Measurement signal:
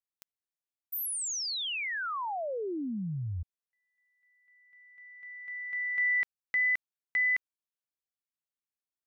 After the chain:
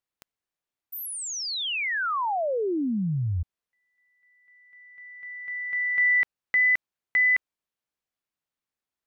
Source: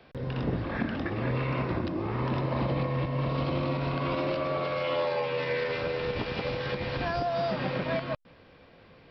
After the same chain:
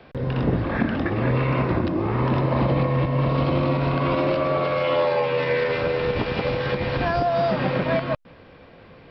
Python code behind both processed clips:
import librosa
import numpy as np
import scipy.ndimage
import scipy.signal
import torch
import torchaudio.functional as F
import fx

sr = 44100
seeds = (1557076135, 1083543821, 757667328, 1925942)

y = fx.high_shelf(x, sr, hz=4400.0, db=-9.5)
y = F.gain(torch.from_numpy(y), 8.0).numpy()